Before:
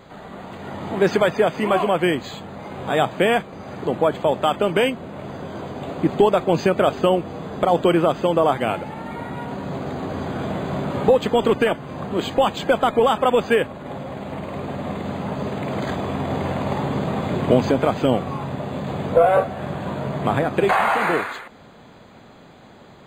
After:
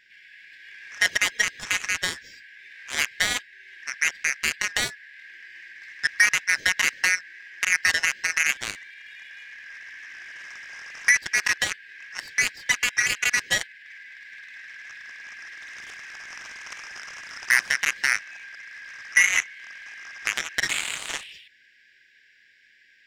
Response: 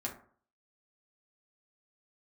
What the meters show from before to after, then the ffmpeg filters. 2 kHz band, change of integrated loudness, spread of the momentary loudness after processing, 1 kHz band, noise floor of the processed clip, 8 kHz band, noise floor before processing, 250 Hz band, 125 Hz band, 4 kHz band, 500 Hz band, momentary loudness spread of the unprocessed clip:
+6.5 dB, −2.0 dB, 21 LU, −17.0 dB, −58 dBFS, can't be measured, −46 dBFS, −26.5 dB, −24.0 dB, +2.5 dB, −28.0 dB, 14 LU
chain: -af "afftfilt=real='real(if(lt(b,272),68*(eq(floor(b/68),0)*3+eq(floor(b/68),1)*0+eq(floor(b/68),2)*1+eq(floor(b/68),3)*2)+mod(b,68),b),0)':imag='imag(if(lt(b,272),68*(eq(floor(b/68),0)*3+eq(floor(b/68),1)*0+eq(floor(b/68),2)*1+eq(floor(b/68),3)*2)+mod(b,68),b),0)':win_size=2048:overlap=0.75,aeval=exprs='0.75*(cos(1*acos(clip(val(0)/0.75,-1,1)))-cos(1*PI/2))+0.15*(cos(7*acos(clip(val(0)/0.75,-1,1)))-cos(7*PI/2))':channel_layout=same,volume=-4dB"

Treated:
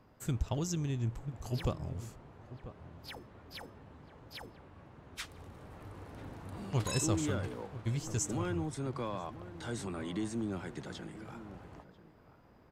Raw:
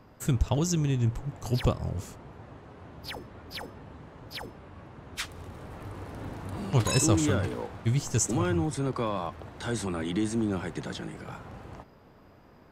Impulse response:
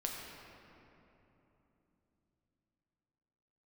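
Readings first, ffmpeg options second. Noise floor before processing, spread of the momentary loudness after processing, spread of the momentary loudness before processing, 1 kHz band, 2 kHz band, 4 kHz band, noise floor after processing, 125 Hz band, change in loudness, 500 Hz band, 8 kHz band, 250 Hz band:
−55 dBFS, 18 LU, 21 LU, −8.0 dB, −8.0 dB, −8.0 dB, −61 dBFS, −8.0 dB, −8.0 dB, −8.0 dB, −8.0 dB, −8.0 dB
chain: -filter_complex "[0:a]asplit=2[link_01][link_02];[link_02]adelay=991.3,volume=-14dB,highshelf=frequency=4000:gain=-22.3[link_03];[link_01][link_03]amix=inputs=2:normalize=0,volume=-8dB"

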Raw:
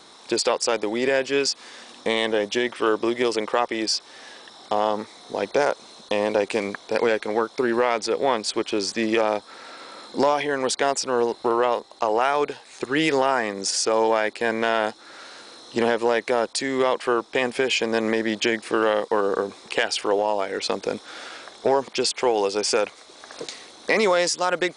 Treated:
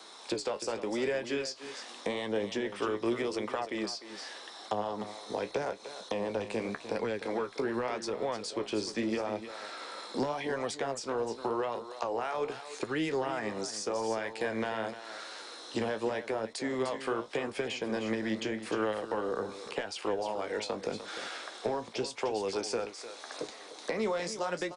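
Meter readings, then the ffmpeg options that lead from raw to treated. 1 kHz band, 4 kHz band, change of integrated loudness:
−12.0 dB, −12.5 dB, −11.5 dB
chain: -filter_complex "[0:a]acrossover=split=160[link_01][link_02];[link_02]acompressor=threshold=-28dB:ratio=6[link_03];[link_01][link_03]amix=inputs=2:normalize=0,flanger=delay=9.1:depth=9.7:regen=52:speed=0.85:shape=sinusoidal,aecho=1:1:301:0.251,acrossover=split=280|1400[link_04][link_05][link_06];[link_04]agate=range=-14dB:threshold=-56dB:ratio=16:detection=peak[link_07];[link_06]alimiter=level_in=6.5dB:limit=-24dB:level=0:latency=1:release=418,volume=-6.5dB[link_08];[link_07][link_05][link_08]amix=inputs=3:normalize=0,volume=2dB"

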